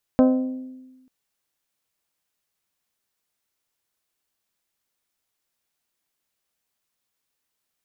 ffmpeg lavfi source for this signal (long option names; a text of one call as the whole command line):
ffmpeg -f lavfi -i "aevalsrc='0.266*pow(10,-3*t/1.23)*sin(2*PI*258*t)+0.15*pow(10,-3*t/0.757)*sin(2*PI*516*t)+0.0841*pow(10,-3*t/0.666)*sin(2*PI*619.2*t)+0.0473*pow(10,-3*t/0.57)*sin(2*PI*774*t)+0.0266*pow(10,-3*t/0.466)*sin(2*PI*1032*t)+0.015*pow(10,-3*t/0.399)*sin(2*PI*1290*t)+0.00841*pow(10,-3*t/0.351)*sin(2*PI*1548*t)':duration=0.89:sample_rate=44100" out.wav